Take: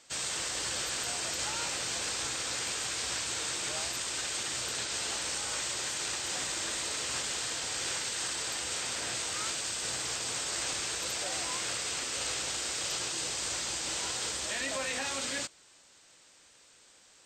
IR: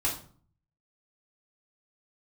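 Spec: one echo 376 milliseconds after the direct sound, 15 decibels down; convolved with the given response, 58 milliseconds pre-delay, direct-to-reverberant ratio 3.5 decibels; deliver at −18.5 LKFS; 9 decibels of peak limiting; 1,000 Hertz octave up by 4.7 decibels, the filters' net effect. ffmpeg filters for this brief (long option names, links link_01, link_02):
-filter_complex "[0:a]equalizer=frequency=1000:width_type=o:gain=6,alimiter=level_in=5.5dB:limit=-24dB:level=0:latency=1,volume=-5.5dB,aecho=1:1:376:0.178,asplit=2[link_01][link_02];[1:a]atrim=start_sample=2205,adelay=58[link_03];[link_02][link_03]afir=irnorm=-1:irlink=0,volume=-11dB[link_04];[link_01][link_04]amix=inputs=2:normalize=0,volume=16.5dB"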